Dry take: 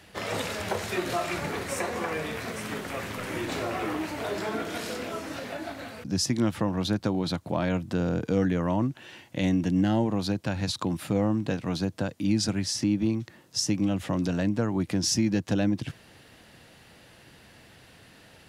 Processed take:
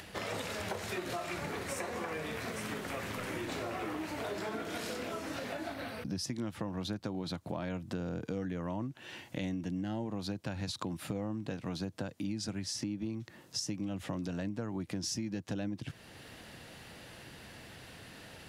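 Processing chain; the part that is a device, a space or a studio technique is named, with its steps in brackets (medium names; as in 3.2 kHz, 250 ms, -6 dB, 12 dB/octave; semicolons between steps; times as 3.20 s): 5.74–6.24 s: peaking EQ 7.1 kHz -14.5 dB 0.22 oct; upward and downward compression (upward compressor, threshold -45 dBFS; compression 4:1, threshold -36 dBFS, peak gain reduction 14 dB)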